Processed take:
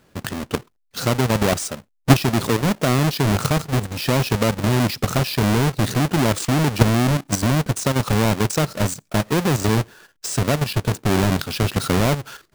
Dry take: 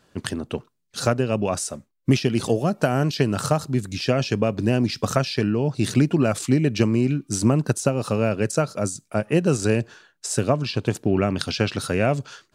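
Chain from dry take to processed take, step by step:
each half-wave held at its own peak
output level in coarse steps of 10 dB
level +3 dB

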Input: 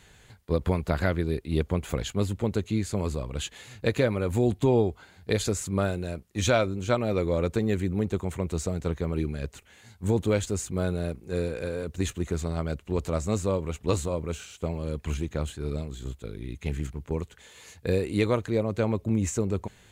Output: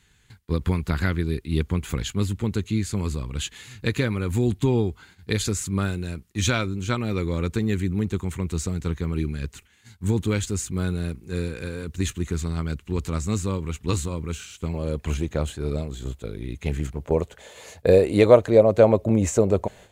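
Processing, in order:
noise gate −52 dBFS, range −9 dB
parametric band 610 Hz −14 dB 0.88 octaves, from 0:14.74 +2.5 dB, from 0:16.96 +13 dB
level +4 dB

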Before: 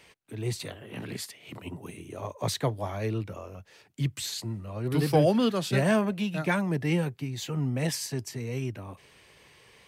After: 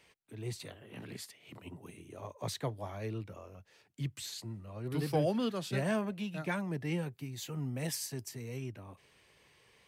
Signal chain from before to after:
0:07.13–0:08.57: high-shelf EQ 9,200 Hz +11 dB
level −8.5 dB

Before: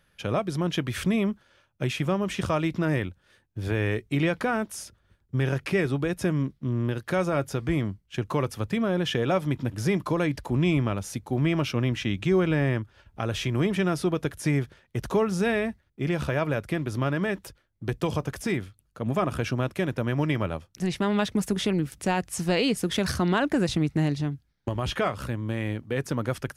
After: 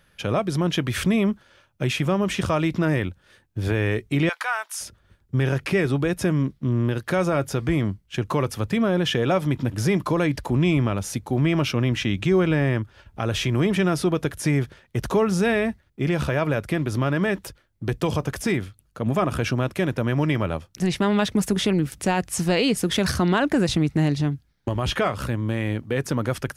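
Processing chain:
0:04.29–0:04.81: high-pass filter 870 Hz 24 dB per octave
in parallel at −0.5 dB: brickwall limiter −21.5 dBFS, peak gain reduction 8.5 dB

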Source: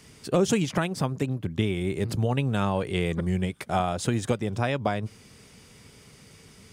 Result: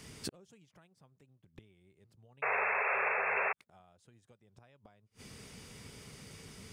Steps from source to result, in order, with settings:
dynamic equaliser 280 Hz, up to −4 dB, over −41 dBFS, Q 1.8
gate with flip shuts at −25 dBFS, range −36 dB
sound drawn into the spectrogram noise, 0:02.42–0:03.53, 390–2,700 Hz −32 dBFS

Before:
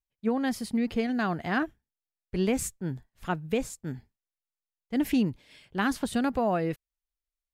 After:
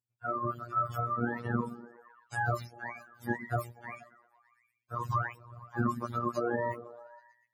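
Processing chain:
frequency axis turned over on the octave scale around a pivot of 550 Hz
echo through a band-pass that steps 119 ms, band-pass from 200 Hz, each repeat 0.7 octaves, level −10 dB
phases set to zero 119 Hz

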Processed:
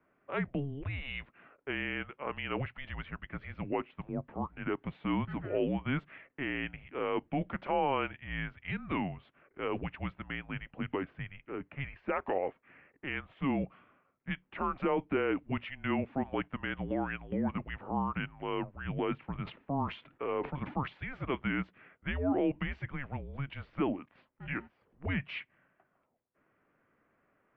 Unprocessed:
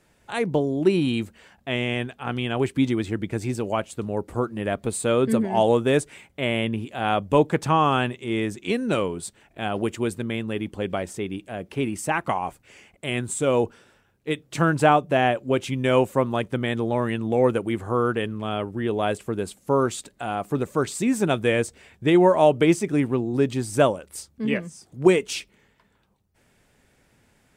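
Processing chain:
low-pass that shuts in the quiet parts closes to 1,800 Hz, open at −16 dBFS
brickwall limiter −15 dBFS, peak gain reduction 10 dB
single-sideband voice off tune −280 Hz 470–3,100 Hz
0:19.16–0:20.88: level that may fall only so fast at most 150 dB per second
level −4.5 dB

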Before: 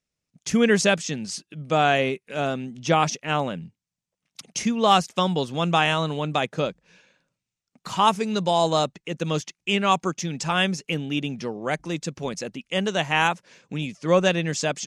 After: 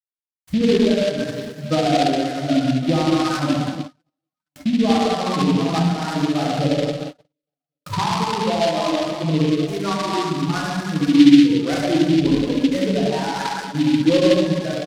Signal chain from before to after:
spectral dynamics exaggerated over time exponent 2
camcorder AGC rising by 8.6 dB per second
reverb whose tail is shaped and stops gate 310 ms flat, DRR −7.5 dB
reverb reduction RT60 1.8 s
in parallel at +1 dB: downward compressor 16 to 1, threshold −25 dBFS, peak gain reduction 16.5 dB
on the sum: soft clipping −8 dBFS, distortion −18 dB
on a send: reverse bouncing-ball delay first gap 70 ms, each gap 1.6×, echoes 5
on the sum: treble cut that deepens with the level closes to 830 Hz, closed at −12 dBFS
noise gate −27 dBFS, range −49 dB
Savitzky-Golay smoothing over 41 samples
parametric band 300 Hz +13.5 dB 0.29 octaves
short delay modulated by noise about 3,000 Hz, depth 0.07 ms
level −3 dB

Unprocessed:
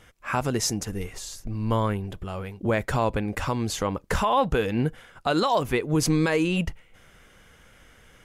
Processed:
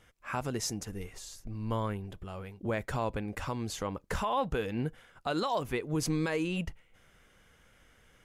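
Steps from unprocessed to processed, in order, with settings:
0:05.27–0:06.60: surface crackle 33 per second −43 dBFS
level −8.5 dB

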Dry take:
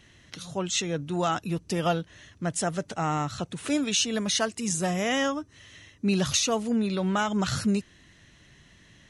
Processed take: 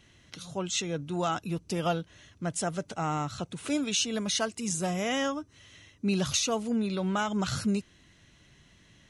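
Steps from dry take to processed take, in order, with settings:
notch filter 1,800 Hz, Q 11
level −3 dB

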